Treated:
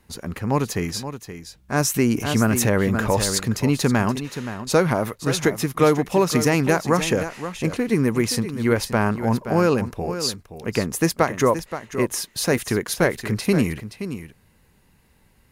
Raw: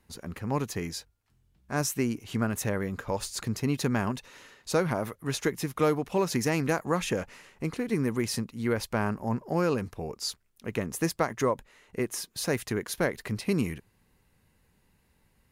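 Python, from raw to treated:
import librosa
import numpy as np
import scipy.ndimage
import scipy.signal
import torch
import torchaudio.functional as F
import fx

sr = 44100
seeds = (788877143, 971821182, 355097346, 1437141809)

y = x + 10.0 ** (-11.0 / 20.0) * np.pad(x, (int(524 * sr / 1000.0), 0))[:len(x)]
y = fx.env_flatten(y, sr, amount_pct=50, at=(1.94, 3.38))
y = F.gain(torch.from_numpy(y), 8.0).numpy()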